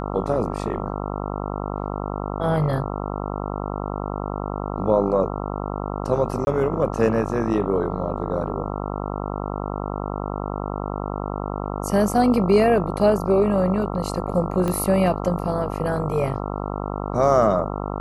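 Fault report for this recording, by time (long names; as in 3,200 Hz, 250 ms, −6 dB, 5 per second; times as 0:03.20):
mains buzz 50 Hz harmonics 27 −28 dBFS
0:06.45–0:06.47: drop-out 21 ms
0:14.68: click −13 dBFS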